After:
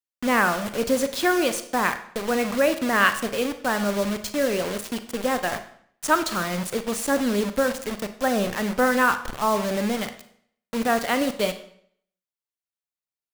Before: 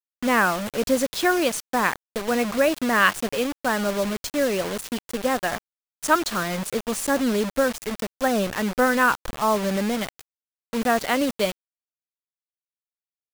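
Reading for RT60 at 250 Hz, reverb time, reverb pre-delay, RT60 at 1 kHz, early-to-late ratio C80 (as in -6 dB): 0.65 s, 0.60 s, 33 ms, 0.60 s, 15.0 dB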